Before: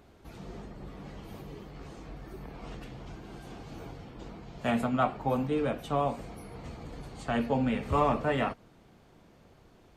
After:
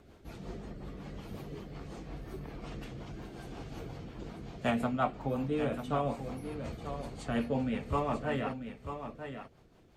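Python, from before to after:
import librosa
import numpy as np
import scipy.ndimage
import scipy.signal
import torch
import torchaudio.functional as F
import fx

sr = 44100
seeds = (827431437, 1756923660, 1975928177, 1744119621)

p1 = fx.rider(x, sr, range_db=3, speed_s=0.5)
p2 = fx.rotary(p1, sr, hz=5.5)
p3 = p2 + fx.echo_single(p2, sr, ms=942, db=-9.0, dry=0)
y = p3 * 10.0 ** (-1.0 / 20.0)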